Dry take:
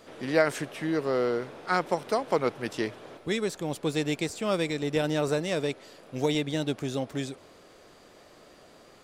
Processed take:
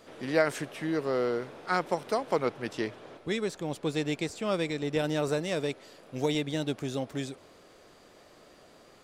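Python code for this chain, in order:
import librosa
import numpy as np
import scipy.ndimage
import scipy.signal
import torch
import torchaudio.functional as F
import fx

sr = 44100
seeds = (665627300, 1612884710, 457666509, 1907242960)

y = fx.high_shelf(x, sr, hz=10000.0, db=-8.5, at=(2.45, 4.99))
y = y * librosa.db_to_amplitude(-2.0)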